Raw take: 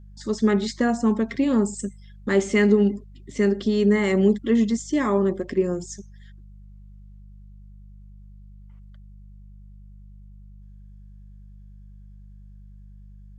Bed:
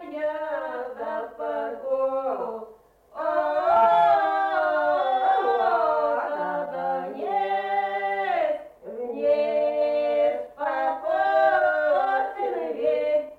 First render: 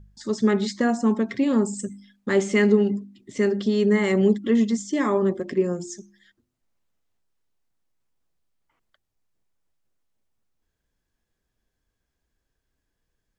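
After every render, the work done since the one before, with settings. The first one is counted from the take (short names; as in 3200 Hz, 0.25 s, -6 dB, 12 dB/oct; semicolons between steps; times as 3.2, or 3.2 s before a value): de-hum 50 Hz, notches 7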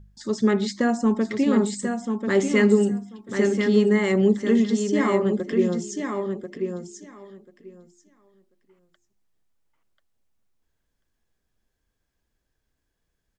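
feedback echo 1.039 s, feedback 15%, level -6 dB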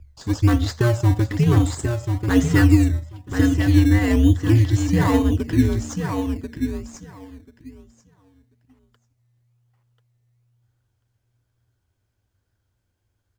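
frequency shift -120 Hz; in parallel at -5 dB: decimation with a swept rate 18×, swing 60% 1.1 Hz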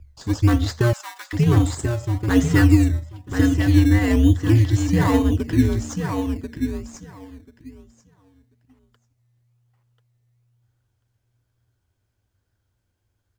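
0.93–1.33 HPF 980 Hz 24 dB/oct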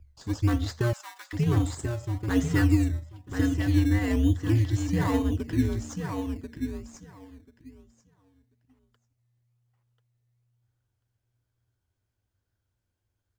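gain -7.5 dB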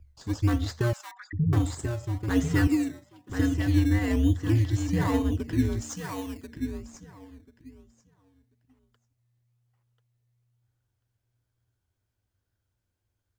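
1.11–1.53 formant sharpening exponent 3; 2.67–3.3 HPF 160 Hz 24 dB/oct; 5.81–6.47 tilt +2 dB/oct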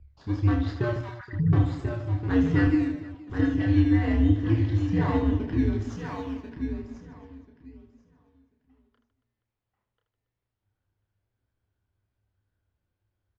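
air absorption 250 m; reverse bouncing-ball echo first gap 30 ms, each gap 1.6×, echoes 5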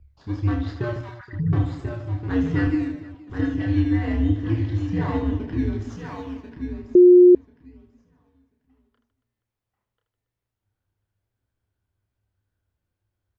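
6.95–7.35 bleep 358 Hz -7 dBFS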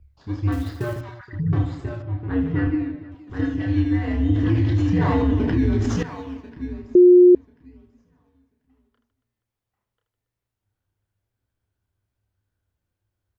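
0.52–1.01 companded quantiser 6-bit; 2.02–3.12 air absorption 300 m; 4.29–6.03 fast leveller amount 70%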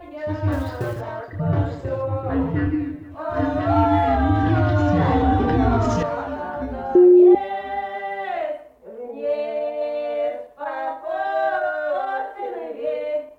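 add bed -2 dB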